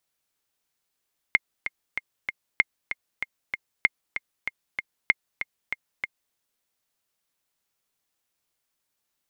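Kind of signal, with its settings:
click track 192 BPM, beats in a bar 4, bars 4, 2,130 Hz, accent 10.5 dB −4.5 dBFS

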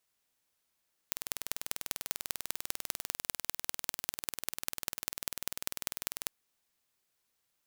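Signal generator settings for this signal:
impulse train 20.2 per second, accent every 4, −3.5 dBFS 5.17 s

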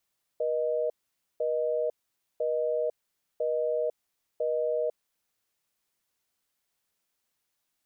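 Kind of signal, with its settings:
call progress tone busy tone, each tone −28 dBFS 4.54 s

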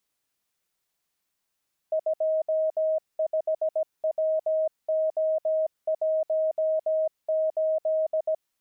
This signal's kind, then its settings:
Morse code "25WO18" 17 words per minute 631 Hz −21.5 dBFS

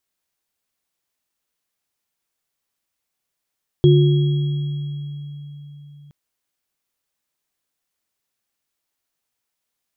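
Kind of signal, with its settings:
inharmonic partials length 2.27 s, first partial 145 Hz, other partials 358/3,300 Hz, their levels −1/−19 dB, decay 4.21 s, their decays 1.55/3.51 s, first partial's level −9.5 dB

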